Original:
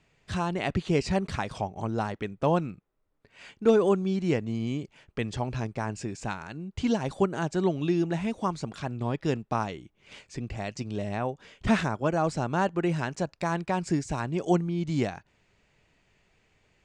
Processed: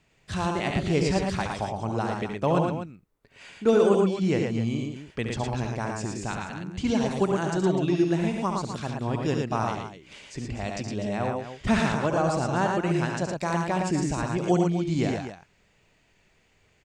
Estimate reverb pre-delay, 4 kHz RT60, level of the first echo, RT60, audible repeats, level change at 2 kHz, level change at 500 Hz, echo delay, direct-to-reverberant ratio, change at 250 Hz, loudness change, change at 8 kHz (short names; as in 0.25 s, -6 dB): none, none, -7.0 dB, none, 3, +3.0 dB, +2.5 dB, 70 ms, none, +2.5 dB, +2.5 dB, +5.0 dB